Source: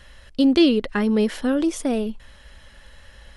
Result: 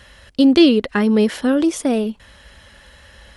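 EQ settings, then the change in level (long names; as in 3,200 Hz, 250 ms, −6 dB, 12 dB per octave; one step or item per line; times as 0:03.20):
high-pass filter 57 Hz 12 dB per octave
+4.5 dB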